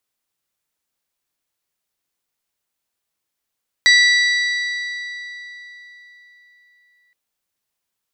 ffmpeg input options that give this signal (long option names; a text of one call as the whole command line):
ffmpeg -f lavfi -i "aevalsrc='0.355*pow(10,-3*t/3.92)*sin(2*PI*1960*t)+0.2*pow(10,-3*t/3.184)*sin(2*PI*3920*t)+0.112*pow(10,-3*t/3.015)*sin(2*PI*4704*t)+0.0631*pow(10,-3*t/2.819)*sin(2*PI*5880*t)+0.0355*pow(10,-3*t/2.586)*sin(2*PI*7840*t)':duration=3.27:sample_rate=44100" out.wav